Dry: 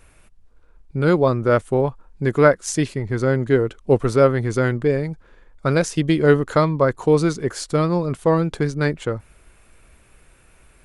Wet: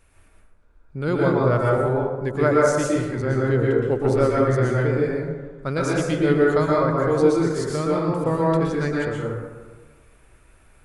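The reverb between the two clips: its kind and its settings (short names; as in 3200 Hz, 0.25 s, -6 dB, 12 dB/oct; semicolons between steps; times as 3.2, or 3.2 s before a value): plate-style reverb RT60 1.4 s, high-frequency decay 0.4×, pre-delay 0.105 s, DRR -4.5 dB; gain -7.5 dB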